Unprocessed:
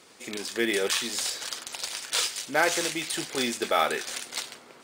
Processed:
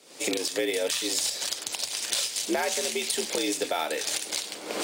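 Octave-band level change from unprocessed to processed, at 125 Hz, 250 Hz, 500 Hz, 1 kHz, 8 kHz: −5.0, −0.5, +0.5, −4.5, +3.0 decibels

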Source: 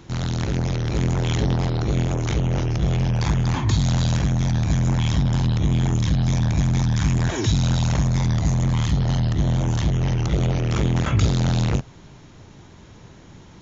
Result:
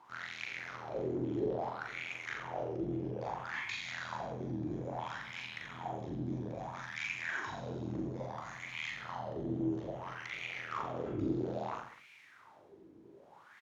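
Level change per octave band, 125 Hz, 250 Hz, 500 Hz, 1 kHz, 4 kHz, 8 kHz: −26.5 dB, −15.5 dB, −8.5 dB, −9.0 dB, −16.5 dB, can't be measured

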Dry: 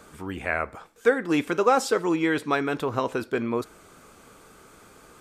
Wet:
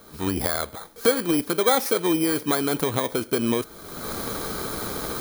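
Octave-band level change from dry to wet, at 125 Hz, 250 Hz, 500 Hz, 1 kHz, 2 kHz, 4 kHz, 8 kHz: +4.5, +2.5, +0.5, −1.0, −2.5, +8.5, +10.5 decibels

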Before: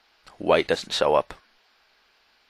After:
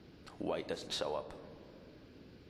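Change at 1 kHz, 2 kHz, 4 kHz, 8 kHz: −18.5, −19.5, −13.0, −11.0 decibels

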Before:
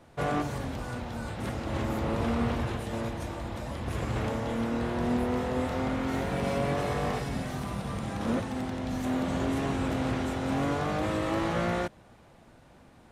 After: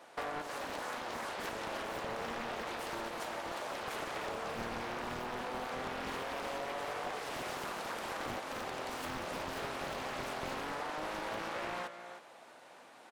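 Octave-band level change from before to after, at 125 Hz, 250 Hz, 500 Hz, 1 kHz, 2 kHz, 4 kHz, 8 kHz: −20.5, −16.5, −8.0, −4.5, −2.5, −2.0, −2.5 decibels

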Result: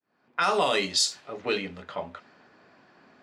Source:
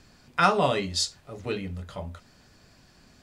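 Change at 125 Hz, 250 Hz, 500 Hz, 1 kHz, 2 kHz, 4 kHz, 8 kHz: −11.0, −3.5, 0.0, −2.0, +0.5, +3.5, +4.0 decibels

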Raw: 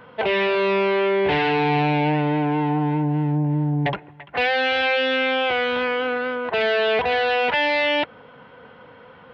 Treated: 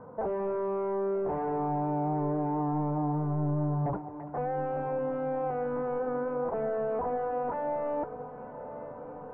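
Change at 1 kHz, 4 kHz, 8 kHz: −9.0 dB, below −40 dB, can't be measured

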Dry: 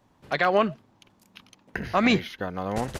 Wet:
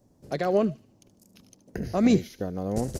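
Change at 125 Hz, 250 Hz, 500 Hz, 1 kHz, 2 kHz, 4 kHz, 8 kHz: +2.5, +2.5, −0.5, −8.0, −13.0, −9.0, +2.5 decibels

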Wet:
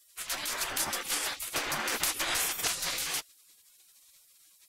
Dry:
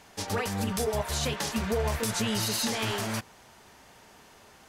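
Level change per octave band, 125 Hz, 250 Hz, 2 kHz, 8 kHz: −20.0, −15.0, +1.5, +2.5 decibels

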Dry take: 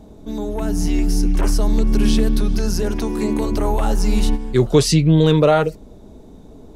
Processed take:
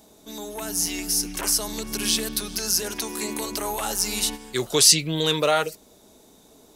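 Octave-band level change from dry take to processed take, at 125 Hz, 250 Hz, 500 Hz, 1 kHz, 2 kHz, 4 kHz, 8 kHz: −17.0, −13.0, −8.5, −4.5, +0.5, +5.5, +9.0 decibels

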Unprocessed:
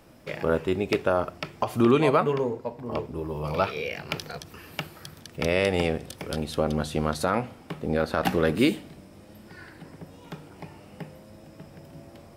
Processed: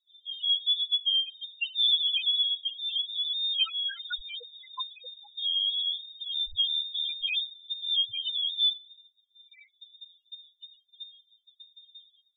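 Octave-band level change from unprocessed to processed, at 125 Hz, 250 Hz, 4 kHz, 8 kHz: below −35 dB, below −40 dB, +15.5 dB, below −35 dB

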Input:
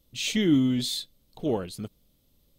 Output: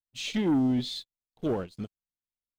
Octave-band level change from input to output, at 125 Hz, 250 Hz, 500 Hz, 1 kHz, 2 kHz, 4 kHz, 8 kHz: −3.0, −2.5, −2.0, +1.5, −5.0, −6.0, −9.5 decibels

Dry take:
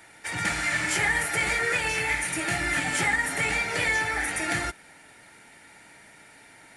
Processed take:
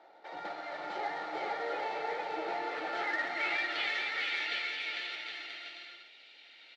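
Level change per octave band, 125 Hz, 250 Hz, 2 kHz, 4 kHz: below −25 dB, −12.5 dB, −10.5 dB, −4.5 dB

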